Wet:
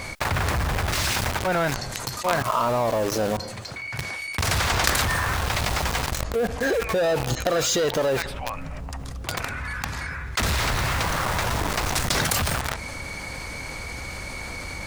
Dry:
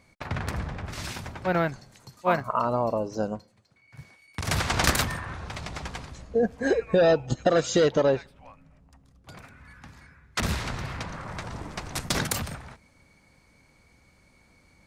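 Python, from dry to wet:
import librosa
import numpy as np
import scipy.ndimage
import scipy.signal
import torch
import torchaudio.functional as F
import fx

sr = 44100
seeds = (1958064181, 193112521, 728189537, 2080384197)

p1 = fx.peak_eq(x, sr, hz=200.0, db=-8.0, octaves=1.8)
p2 = fx.quant_companded(p1, sr, bits=2)
p3 = p1 + (p2 * librosa.db_to_amplitude(-4.5))
p4 = fx.env_flatten(p3, sr, amount_pct=70)
y = p4 * librosa.db_to_amplitude(-5.5)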